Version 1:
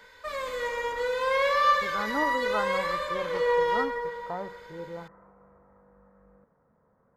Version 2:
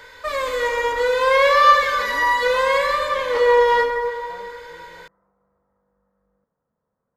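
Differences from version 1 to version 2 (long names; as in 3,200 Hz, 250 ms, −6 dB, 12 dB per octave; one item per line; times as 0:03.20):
speech −11.5 dB
background +9.5 dB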